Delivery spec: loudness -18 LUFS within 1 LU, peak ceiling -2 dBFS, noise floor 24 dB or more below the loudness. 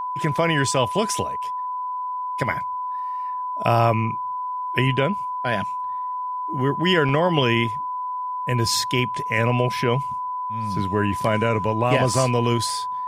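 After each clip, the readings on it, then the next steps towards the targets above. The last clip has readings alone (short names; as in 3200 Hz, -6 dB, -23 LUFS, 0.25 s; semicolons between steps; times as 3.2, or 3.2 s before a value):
dropouts 4; longest dropout 1.9 ms; steady tone 1000 Hz; tone level -25 dBFS; loudness -22.5 LUFS; peak -4.0 dBFS; loudness target -18.0 LUFS
-> interpolate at 0.38/5.49/7.09/12.14, 1.9 ms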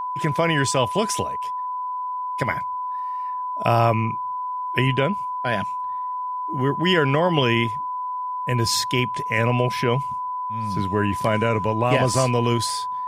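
dropouts 0; steady tone 1000 Hz; tone level -25 dBFS
-> notch 1000 Hz, Q 30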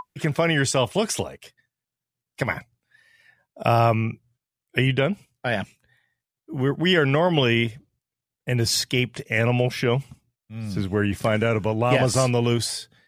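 steady tone none; loudness -23.0 LUFS; peak -4.0 dBFS; loudness target -18.0 LUFS
-> gain +5 dB; limiter -2 dBFS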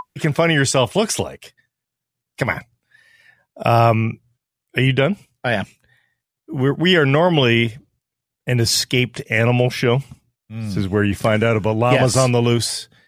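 loudness -18.0 LUFS; peak -2.0 dBFS; noise floor -83 dBFS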